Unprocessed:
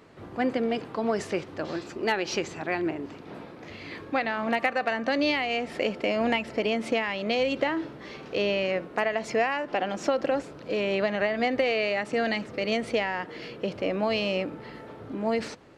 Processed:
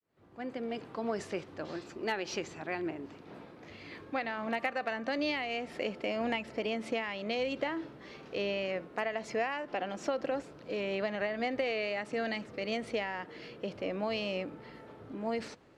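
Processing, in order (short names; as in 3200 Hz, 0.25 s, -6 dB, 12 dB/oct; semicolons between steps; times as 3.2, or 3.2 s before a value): opening faded in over 0.91 s; wow and flutter 21 cents; gain -7.5 dB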